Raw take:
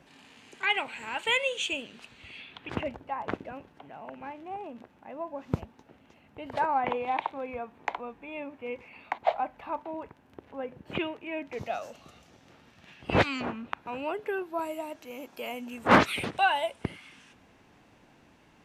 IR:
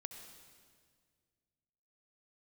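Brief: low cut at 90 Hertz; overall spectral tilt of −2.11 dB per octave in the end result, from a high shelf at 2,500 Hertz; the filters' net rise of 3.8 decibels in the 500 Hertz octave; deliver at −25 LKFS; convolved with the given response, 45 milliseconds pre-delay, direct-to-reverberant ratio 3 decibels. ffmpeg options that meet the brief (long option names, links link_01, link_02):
-filter_complex "[0:a]highpass=90,equalizer=frequency=500:width_type=o:gain=4.5,highshelf=frequency=2500:gain=4,asplit=2[link_01][link_02];[1:a]atrim=start_sample=2205,adelay=45[link_03];[link_02][link_03]afir=irnorm=-1:irlink=0,volume=1dB[link_04];[link_01][link_04]amix=inputs=2:normalize=0,volume=2.5dB"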